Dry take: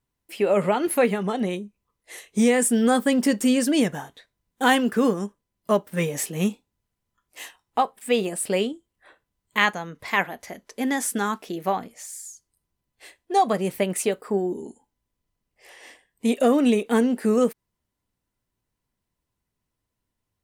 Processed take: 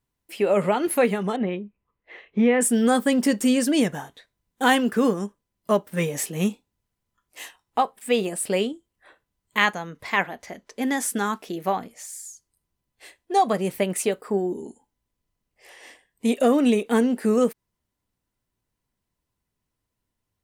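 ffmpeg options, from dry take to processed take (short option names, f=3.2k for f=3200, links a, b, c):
-filter_complex "[0:a]asettb=1/sr,asplit=3[a][b][c];[a]atrim=end=1.364[d];[b]atrim=start=1.36:end=2.61,asetpts=PTS-STARTPTS,afade=t=in:d=0.004:c=qsin,afade=t=out:st=1.246:d=0.004:c=qsin,lowpass=f=2.8k:w=0.5412,lowpass=f=2.8k:w=1.3066[e];[c]atrim=start=2.606[f];[d][e]acrossfade=d=0.004:c1=hsin:c2=qsin[g];[g][f]acrossfade=d=0.004:c1=qsin:c2=hsin,asettb=1/sr,asplit=3[h][i][j];[h]atrim=end=10.074[k];[i]atrim=start=10.07:end=10.82,asetpts=PTS-STARTPTS,afade=t=in:d=0.004:c=qsin,afade=t=out:st=0.746:d=0.004:c=qsin,equalizer=f=12k:t=o:w=0.8:g=-8.5[l];[j]atrim=start=10.816[m];[k][l]acrossfade=d=0.004:c1=hsin:c2=qsin[n];[n][m]acrossfade=d=0.004:c1=qsin:c2=hsin"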